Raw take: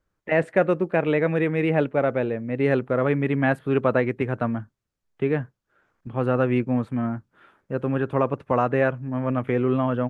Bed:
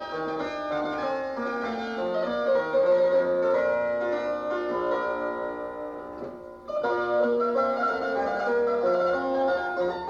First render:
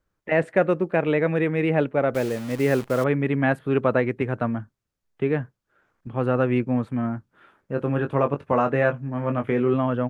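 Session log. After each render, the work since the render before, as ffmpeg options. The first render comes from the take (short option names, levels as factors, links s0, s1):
-filter_complex "[0:a]asettb=1/sr,asplit=3[s0][s1][s2];[s0]atrim=end=2.144[s3];[s1]atrim=start=2.14:end=3.04,asetpts=PTS-STARTPTS,afade=t=in:d=0.004:c=qsin,afade=t=out:st=0.896:d=0.004:c=qsin,acrusher=bits=7:dc=4:mix=0:aa=0.000001[s4];[s2]atrim=start=3.036[s5];[s3][s4]acrossfade=d=0.004:c1=hsin:c2=qsin[s6];[s6][s5]acrossfade=d=0.004:c1=qsin:c2=hsin,asettb=1/sr,asplit=3[s7][s8][s9];[s7]atrim=end=7.744[s10];[s8]atrim=start=7.74:end=9.74,asetpts=PTS-STARTPTS,afade=t=in:d=0.004:c=qsin,afade=t=out:st=1.996:d=0.004:c=qsin,asplit=2[s11][s12];[s12]adelay=21,volume=0.447[s13];[s11][s13]amix=inputs=2:normalize=0,atrim=end_sample=88200[s14];[s9]atrim=start=9.736[s15];[s10][s14]acrossfade=d=0.004:c1=hsin:c2=qsin[s16];[s16][s15]acrossfade=d=0.004:c1=qsin:c2=hsin"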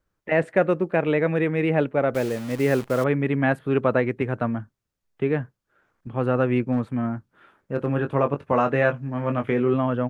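-filter_complex "[0:a]asettb=1/sr,asplit=3[s0][s1][s2];[s0]atrim=end=6.724[s3];[s1]atrim=start=6.72:end=7.93,asetpts=PTS-STARTPTS,afade=t=in:d=0.004:c=qsin,afade=t=out:st=1.206:d=0.004:c=qsin,asoftclip=type=hard:threshold=0.178[s4];[s2]atrim=start=7.926[s5];[s3][s4]acrossfade=d=0.004:c1=hsin:c2=qsin[s6];[s6][s5]acrossfade=d=0.004:c1=qsin:c2=hsin,asettb=1/sr,asplit=3[s7][s8][s9];[s7]atrim=end=8.544[s10];[s8]atrim=start=8.54:end=9.54,asetpts=PTS-STARTPTS,afade=t=in:d=0.004:c=qsin,afade=t=out:st=0.996:d=0.004:c=qsin,equalizer=f=4100:t=o:w=2:g=4[s11];[s9]atrim=start=9.536[s12];[s10][s11]acrossfade=d=0.004:c1=hsin:c2=qsin[s13];[s13][s12]acrossfade=d=0.004:c1=qsin:c2=hsin"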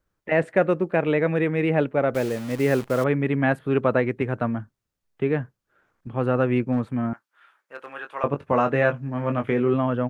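-filter_complex "[0:a]asettb=1/sr,asplit=3[s0][s1][s2];[s0]atrim=end=7.134[s3];[s1]atrim=start=7.13:end=8.24,asetpts=PTS-STARTPTS,afade=t=in:d=0.004:c=qsin,afade=t=out:st=1.106:d=0.004:c=qsin,highpass=1100[s4];[s2]atrim=start=8.236[s5];[s3][s4]acrossfade=d=0.004:c1=hsin:c2=qsin[s6];[s6][s5]acrossfade=d=0.004:c1=qsin:c2=hsin"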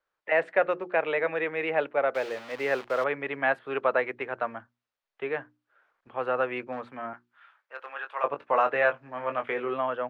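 -filter_complex "[0:a]acrossover=split=480 4800:gain=0.0631 1 0.126[s0][s1][s2];[s0][s1][s2]amix=inputs=3:normalize=0,bandreject=f=60:t=h:w=6,bandreject=f=120:t=h:w=6,bandreject=f=180:t=h:w=6,bandreject=f=240:t=h:w=6,bandreject=f=300:t=h:w=6,bandreject=f=360:t=h:w=6"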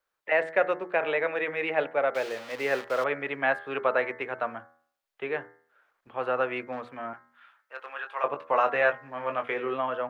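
-af "highshelf=f=4700:g=6.5,bandreject=f=80.76:t=h:w=4,bandreject=f=161.52:t=h:w=4,bandreject=f=242.28:t=h:w=4,bandreject=f=323.04:t=h:w=4,bandreject=f=403.8:t=h:w=4,bandreject=f=484.56:t=h:w=4,bandreject=f=565.32:t=h:w=4,bandreject=f=646.08:t=h:w=4,bandreject=f=726.84:t=h:w=4,bandreject=f=807.6:t=h:w=4,bandreject=f=888.36:t=h:w=4,bandreject=f=969.12:t=h:w=4,bandreject=f=1049.88:t=h:w=4,bandreject=f=1130.64:t=h:w=4,bandreject=f=1211.4:t=h:w=4,bandreject=f=1292.16:t=h:w=4,bandreject=f=1372.92:t=h:w=4,bandreject=f=1453.68:t=h:w=4,bandreject=f=1534.44:t=h:w=4,bandreject=f=1615.2:t=h:w=4,bandreject=f=1695.96:t=h:w=4,bandreject=f=1776.72:t=h:w=4,bandreject=f=1857.48:t=h:w=4,bandreject=f=1938.24:t=h:w=4,bandreject=f=2019:t=h:w=4,bandreject=f=2099.76:t=h:w=4,bandreject=f=2180.52:t=h:w=4"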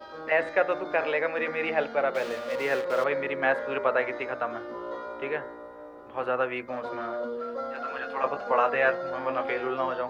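-filter_complex "[1:a]volume=0.335[s0];[0:a][s0]amix=inputs=2:normalize=0"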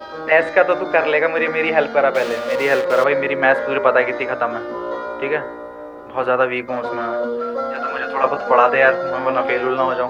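-af "volume=3.35,alimiter=limit=0.891:level=0:latency=1"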